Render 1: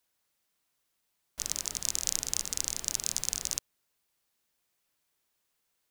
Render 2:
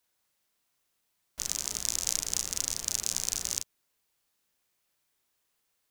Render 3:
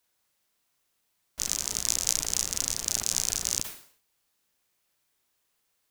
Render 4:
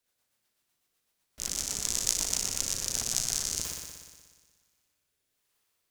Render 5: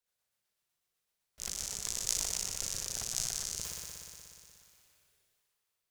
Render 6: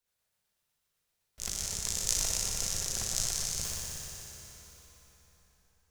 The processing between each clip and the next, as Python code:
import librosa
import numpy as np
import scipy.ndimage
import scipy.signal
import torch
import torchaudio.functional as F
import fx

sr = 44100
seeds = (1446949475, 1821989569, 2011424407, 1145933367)

y1 = fx.room_early_taps(x, sr, ms=(35, 46), db=(-5.5, -17.0))
y2 = fx.sustainer(y1, sr, db_per_s=110.0)
y2 = y2 * 10.0 ** (2.0 / 20.0)
y3 = fx.rotary_switch(y2, sr, hz=8.0, then_hz=1.1, switch_at_s=2.78)
y3 = fx.echo_heads(y3, sr, ms=60, heads='first and second', feedback_pct=66, wet_db=-9)
y3 = y3 * 10.0 ** (-1.0 / 20.0)
y4 = fx.peak_eq(y3, sr, hz=270.0, db=-13.0, octaves=0.32)
y4 = fx.sustainer(y4, sr, db_per_s=22.0)
y4 = y4 * 10.0 ** (-7.5 / 20.0)
y5 = fx.low_shelf(y4, sr, hz=120.0, db=7.5)
y5 = fx.rev_plate(y5, sr, seeds[0], rt60_s=4.1, hf_ratio=0.7, predelay_ms=0, drr_db=3.0)
y5 = y5 * 10.0 ** (2.0 / 20.0)